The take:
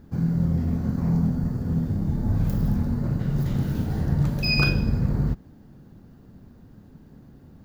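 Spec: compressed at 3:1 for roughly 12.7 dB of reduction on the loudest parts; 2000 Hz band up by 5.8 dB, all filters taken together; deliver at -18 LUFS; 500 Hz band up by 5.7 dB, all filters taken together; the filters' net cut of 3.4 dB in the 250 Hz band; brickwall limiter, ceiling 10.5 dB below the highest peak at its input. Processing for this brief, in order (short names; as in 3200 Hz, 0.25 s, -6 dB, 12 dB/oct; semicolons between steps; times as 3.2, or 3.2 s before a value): bell 250 Hz -7.5 dB; bell 500 Hz +9 dB; bell 2000 Hz +8 dB; compressor 3:1, threshold -32 dBFS; gain +21 dB; limiter -9.5 dBFS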